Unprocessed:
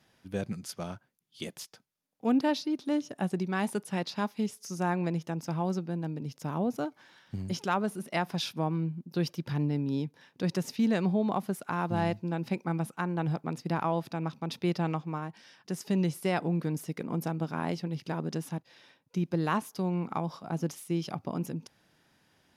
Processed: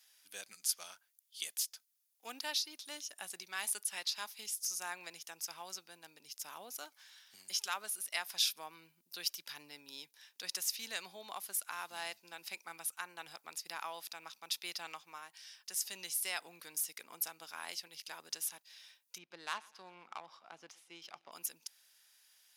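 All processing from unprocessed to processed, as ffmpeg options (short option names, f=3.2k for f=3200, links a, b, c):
-filter_complex "[0:a]asettb=1/sr,asplit=3[a][b][c];[a]atrim=end=19.184[d];[b]atrim=start=19.18:end=21.32,asetpts=PTS-STARTPTS,afade=t=in:d=0.004:c=qsin,afade=t=out:st=2.136:d=0.004:c=qsin,adynamicsmooth=sensitivity=2.5:basefreq=2.1k,aecho=1:1:124|248|372|496:0.0668|0.0361|0.0195|0.0105,atrim=end_sample=94374[e];[c]atrim=start=21.316[f];[d][e]acrossfade=d=0.004:c1=hsin:c2=qsin[g];[g][f]acrossfade=d=0.004:c1=qsin:c2=hsin,highpass=f=970:p=1,aderivative,volume=8.5dB"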